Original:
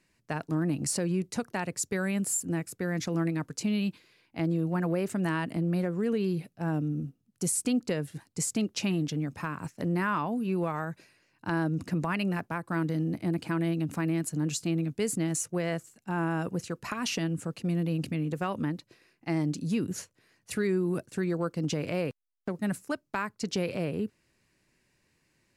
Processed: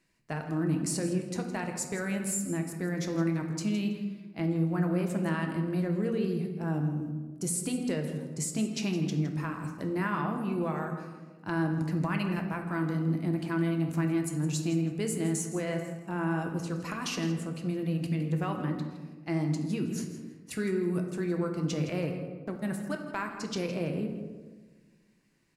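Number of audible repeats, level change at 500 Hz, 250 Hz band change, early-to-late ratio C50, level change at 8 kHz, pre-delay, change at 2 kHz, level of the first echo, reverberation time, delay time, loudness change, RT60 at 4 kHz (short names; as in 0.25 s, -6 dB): 1, -1.0 dB, 0.0 dB, 6.0 dB, -2.5 dB, 3 ms, -1.5 dB, -13.5 dB, 1.3 s, 0.163 s, -0.5 dB, 0.75 s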